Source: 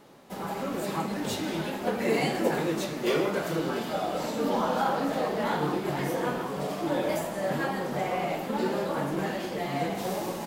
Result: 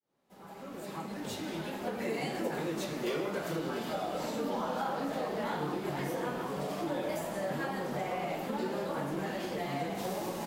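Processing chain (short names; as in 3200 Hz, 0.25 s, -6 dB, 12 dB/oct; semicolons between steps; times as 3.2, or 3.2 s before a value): opening faded in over 2.83 s; compressor 2.5:1, threshold -34 dBFS, peak gain reduction 9 dB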